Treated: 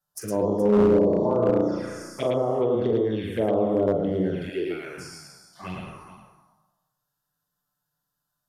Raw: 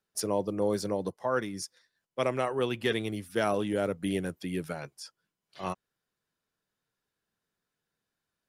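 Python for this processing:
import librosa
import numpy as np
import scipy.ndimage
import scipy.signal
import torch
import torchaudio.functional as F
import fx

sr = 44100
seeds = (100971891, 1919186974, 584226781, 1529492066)

y = fx.spec_trails(x, sr, decay_s=1.22)
y = fx.peak_eq(y, sr, hz=13000.0, db=13.0, octaves=0.21)
y = fx.room_flutter(y, sr, wall_m=5.8, rt60_s=1.0, at=(0.62, 2.26))
y = fx.env_lowpass_down(y, sr, base_hz=800.0, full_db=-20.5)
y = fx.env_flanger(y, sr, rest_ms=6.8, full_db=-24.0)
y = fx.notch(y, sr, hz=3900.0, q=29.0)
y = fx.env_phaser(y, sr, low_hz=390.0, high_hz=2500.0, full_db=-26.0)
y = fx.echo_multitap(y, sr, ms=(43, 111, 421), db=(-9.0, -3.5, -15.0))
y = np.clip(y, -10.0 ** (-17.0 / 20.0), 10.0 ** (-17.0 / 20.0))
y = fx.low_shelf_res(y, sr, hz=270.0, db=-10.5, q=3.0, at=(4.49, 4.98))
y = y * 10.0 ** (4.0 / 20.0)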